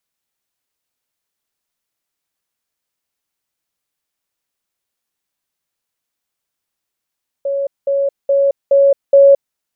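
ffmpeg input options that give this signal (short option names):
-f lavfi -i "aevalsrc='pow(10,(-15.5+3*floor(t/0.42))/20)*sin(2*PI*556*t)*clip(min(mod(t,0.42),0.22-mod(t,0.42))/0.005,0,1)':d=2.1:s=44100"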